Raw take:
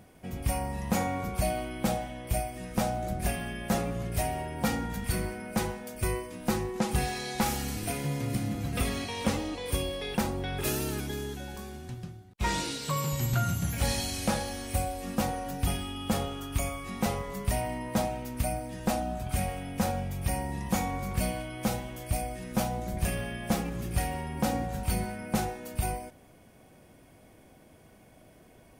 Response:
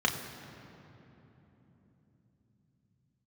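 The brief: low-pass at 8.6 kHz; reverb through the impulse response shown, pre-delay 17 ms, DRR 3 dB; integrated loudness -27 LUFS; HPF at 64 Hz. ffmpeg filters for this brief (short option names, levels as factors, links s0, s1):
-filter_complex "[0:a]highpass=64,lowpass=8600,asplit=2[s0][s1];[1:a]atrim=start_sample=2205,adelay=17[s2];[s1][s2]afir=irnorm=-1:irlink=0,volume=0.211[s3];[s0][s3]amix=inputs=2:normalize=0,volume=1.5"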